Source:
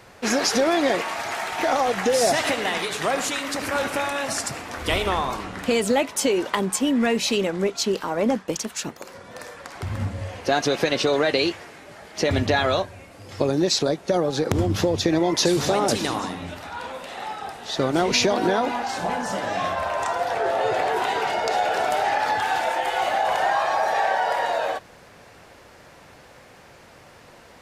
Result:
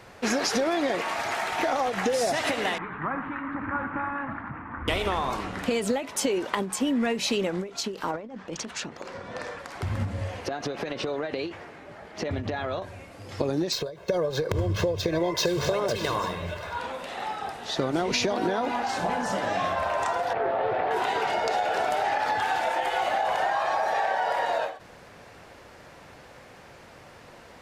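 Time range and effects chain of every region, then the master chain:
2.78–4.88 CVSD 64 kbps + inverse Chebyshev low-pass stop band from 5300 Hz, stop band 60 dB + band shelf 530 Hz -13 dB 1.2 oct
8.11–9.59 negative-ratio compressor -28 dBFS, ratio -0.5 + air absorption 77 m
10.48–12.82 high shelf 3500 Hz -11.5 dB + compressor 12:1, threshold -25 dBFS
13.72–16.79 median filter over 5 samples + comb 1.9 ms, depth 78% + gate with hold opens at -26 dBFS, closes at -34 dBFS
20.33–20.91 air absorption 350 m + short-mantissa float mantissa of 8-bit + Doppler distortion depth 0.19 ms
whole clip: high shelf 5200 Hz -4.5 dB; compressor, threshold -22 dBFS; ending taper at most 130 dB/s

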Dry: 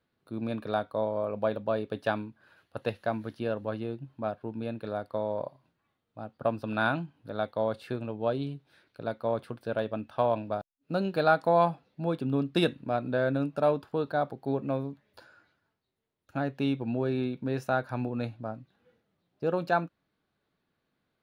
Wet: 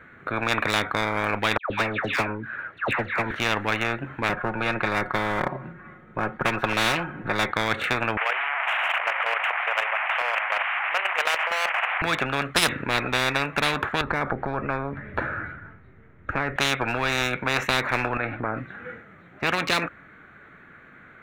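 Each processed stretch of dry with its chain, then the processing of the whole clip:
1.57–3.31 air absorption 79 m + dispersion lows, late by 0.132 s, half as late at 1600 Hz + upward expander, over -39 dBFS
4.29–7.51 tilt shelf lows +7.5 dB, about 1100 Hz + comb 5.5 ms, depth 67%
8.17–12.02 delta modulation 64 kbps, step -33.5 dBFS + Chebyshev band-pass 700–3000 Hz, order 4 + level quantiser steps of 9 dB
14.01–16.56 RIAA curve playback + compressor 2:1, threshold -38 dBFS
18.17–18.57 compressor 10:1, threshold -38 dBFS + air absorption 180 m
whole clip: Wiener smoothing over 9 samples; band shelf 1700 Hz +13 dB 1.1 oct; spectral compressor 10:1

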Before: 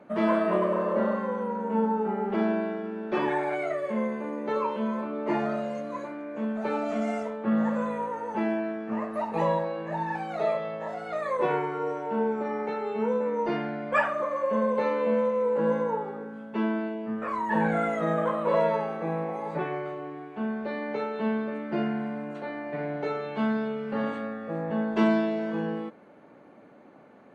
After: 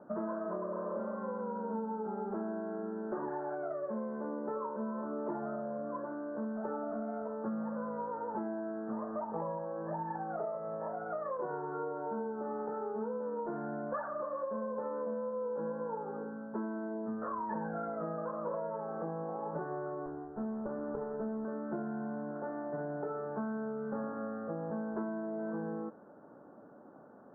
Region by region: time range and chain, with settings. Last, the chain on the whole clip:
20.06–21.45 minimum comb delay 0.36 ms + LPF 1400 Hz
whole clip: elliptic low-pass 1500 Hz, stop band 40 dB; compressor 10:1, threshold -32 dBFS; gain -2 dB

